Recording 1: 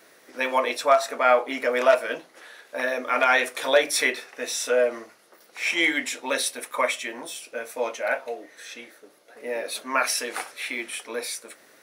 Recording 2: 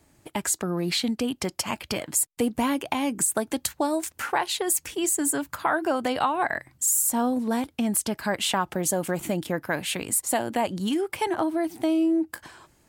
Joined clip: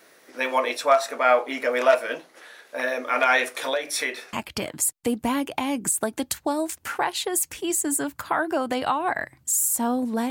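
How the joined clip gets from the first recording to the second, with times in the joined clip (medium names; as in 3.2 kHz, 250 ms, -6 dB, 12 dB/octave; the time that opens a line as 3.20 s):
recording 1
3.58–4.33 s: compression 5:1, threshold -23 dBFS
4.33 s: go over to recording 2 from 1.67 s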